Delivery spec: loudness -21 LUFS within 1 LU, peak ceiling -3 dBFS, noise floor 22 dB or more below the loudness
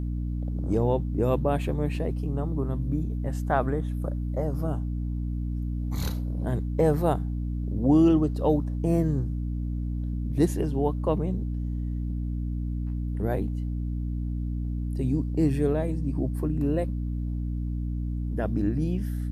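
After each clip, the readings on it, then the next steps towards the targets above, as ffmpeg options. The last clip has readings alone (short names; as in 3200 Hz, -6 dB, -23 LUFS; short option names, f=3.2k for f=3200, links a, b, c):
hum 60 Hz; harmonics up to 300 Hz; hum level -27 dBFS; loudness -28.0 LUFS; peak -10.0 dBFS; loudness target -21.0 LUFS
-> -af "bandreject=f=60:t=h:w=6,bandreject=f=120:t=h:w=6,bandreject=f=180:t=h:w=6,bandreject=f=240:t=h:w=6,bandreject=f=300:t=h:w=6"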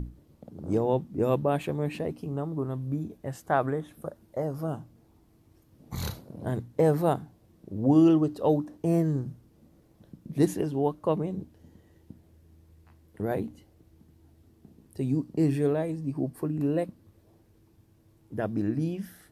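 hum none; loudness -28.5 LUFS; peak -11.0 dBFS; loudness target -21.0 LUFS
-> -af "volume=7.5dB"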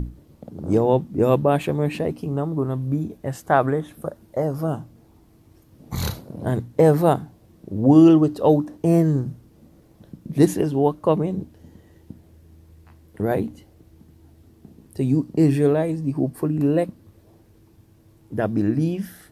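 loudness -21.0 LUFS; peak -3.5 dBFS; noise floor -54 dBFS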